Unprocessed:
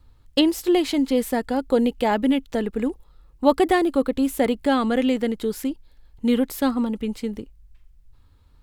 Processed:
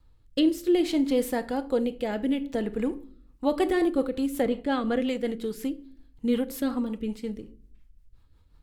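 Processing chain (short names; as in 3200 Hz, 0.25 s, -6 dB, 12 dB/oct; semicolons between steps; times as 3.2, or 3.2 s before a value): 4.42–5.01 LPF 4000 Hz 6 dB/oct; reverb RT60 0.55 s, pre-delay 6 ms, DRR 10 dB; rotary speaker horn 0.6 Hz, later 5.5 Hz, at 2.84; gain -3.5 dB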